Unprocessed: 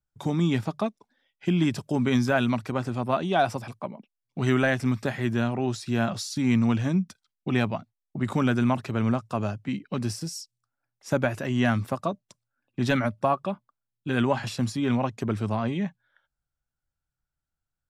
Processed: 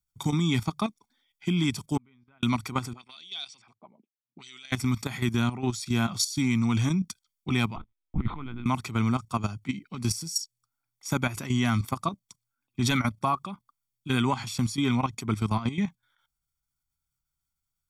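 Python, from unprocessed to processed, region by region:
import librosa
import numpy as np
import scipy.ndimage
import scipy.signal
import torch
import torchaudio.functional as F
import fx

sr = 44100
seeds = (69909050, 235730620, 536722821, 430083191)

y = fx.chain(x, sr, fx.lowpass(hz=3000.0, slope=24),
    fx.gate_flip(shuts_db=-18.0, range_db=-37), at=(1.97, 2.43))
y = fx.chain(y, sr, fx.peak_eq(hz=1100.0, db=-9.0, octaves=1.6),
    fx.auto_wah(base_hz=210.0, top_hz=4000.0, q=2.3, full_db=-25.0, direction='up'),
    fx.brickwall_lowpass(high_hz=9300.0), at=(2.93, 4.72))
y = fx.chain(y, sr, fx.median_filter(points=9),
    fx.over_compress(threshold_db=-29.0, ratio=-0.5),
    fx.lpc_vocoder(seeds[0], excitation='pitch_kept', order=10), at=(7.76, 8.66))
y = fx.high_shelf(y, sr, hz=3400.0, db=12.0)
y = y + 0.67 * np.pad(y, (int(0.9 * sr / 1000.0), 0))[:len(y)]
y = fx.level_steps(y, sr, step_db=12)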